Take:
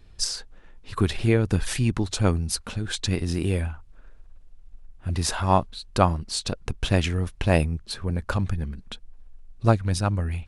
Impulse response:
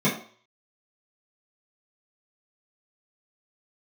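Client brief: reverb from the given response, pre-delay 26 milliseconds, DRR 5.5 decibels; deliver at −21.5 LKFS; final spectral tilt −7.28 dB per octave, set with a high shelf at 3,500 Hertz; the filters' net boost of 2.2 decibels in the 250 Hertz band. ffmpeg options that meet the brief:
-filter_complex "[0:a]equalizer=frequency=250:width_type=o:gain=3,highshelf=frequency=3500:gain=-4.5,asplit=2[link_01][link_02];[1:a]atrim=start_sample=2205,adelay=26[link_03];[link_02][link_03]afir=irnorm=-1:irlink=0,volume=-20.5dB[link_04];[link_01][link_04]amix=inputs=2:normalize=0"

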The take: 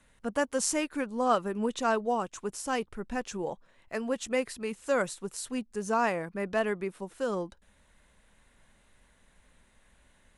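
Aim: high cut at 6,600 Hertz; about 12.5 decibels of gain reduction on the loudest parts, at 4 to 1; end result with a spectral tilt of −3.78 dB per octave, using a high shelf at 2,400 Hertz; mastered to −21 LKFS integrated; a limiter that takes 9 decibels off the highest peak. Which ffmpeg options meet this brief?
ffmpeg -i in.wav -af "lowpass=6600,highshelf=frequency=2400:gain=3.5,acompressor=threshold=-35dB:ratio=4,volume=20.5dB,alimiter=limit=-10dB:level=0:latency=1" out.wav

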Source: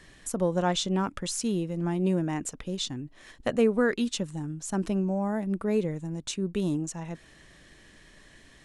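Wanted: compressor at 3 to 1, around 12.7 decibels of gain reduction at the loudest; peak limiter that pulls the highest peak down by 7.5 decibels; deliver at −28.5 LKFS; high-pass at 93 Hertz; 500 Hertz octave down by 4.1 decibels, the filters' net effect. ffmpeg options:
ffmpeg -i in.wav -af "highpass=93,equalizer=frequency=500:width_type=o:gain=-5,acompressor=threshold=-39dB:ratio=3,volume=13dB,alimiter=limit=-20dB:level=0:latency=1" out.wav

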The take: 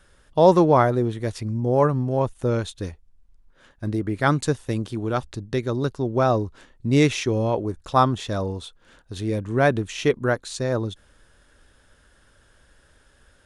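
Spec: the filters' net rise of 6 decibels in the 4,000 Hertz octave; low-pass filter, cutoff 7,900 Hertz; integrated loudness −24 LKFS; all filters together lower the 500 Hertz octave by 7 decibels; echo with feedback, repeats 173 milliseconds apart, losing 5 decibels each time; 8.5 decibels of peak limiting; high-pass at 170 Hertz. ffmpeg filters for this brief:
ffmpeg -i in.wav -af "highpass=170,lowpass=7900,equalizer=frequency=500:width_type=o:gain=-9,equalizer=frequency=4000:width_type=o:gain=7.5,alimiter=limit=-13.5dB:level=0:latency=1,aecho=1:1:173|346|519|692|865|1038|1211:0.562|0.315|0.176|0.0988|0.0553|0.031|0.0173,volume=3.5dB" out.wav

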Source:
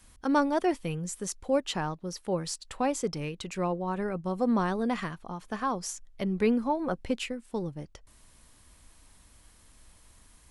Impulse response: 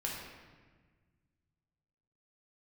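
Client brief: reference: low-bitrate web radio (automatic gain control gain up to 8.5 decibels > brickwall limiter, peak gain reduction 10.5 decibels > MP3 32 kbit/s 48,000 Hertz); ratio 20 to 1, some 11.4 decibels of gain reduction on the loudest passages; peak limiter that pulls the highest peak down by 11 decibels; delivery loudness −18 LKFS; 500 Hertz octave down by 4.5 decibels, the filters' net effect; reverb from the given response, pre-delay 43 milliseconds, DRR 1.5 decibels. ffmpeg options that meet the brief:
-filter_complex "[0:a]equalizer=frequency=500:width_type=o:gain=-5.5,acompressor=threshold=-34dB:ratio=20,alimiter=level_in=9.5dB:limit=-24dB:level=0:latency=1,volume=-9.5dB,asplit=2[link_01][link_02];[1:a]atrim=start_sample=2205,adelay=43[link_03];[link_02][link_03]afir=irnorm=-1:irlink=0,volume=-4dB[link_04];[link_01][link_04]amix=inputs=2:normalize=0,dynaudnorm=maxgain=8.5dB,alimiter=level_in=12.5dB:limit=-24dB:level=0:latency=1,volume=-12.5dB,volume=27.5dB" -ar 48000 -c:a libmp3lame -b:a 32k

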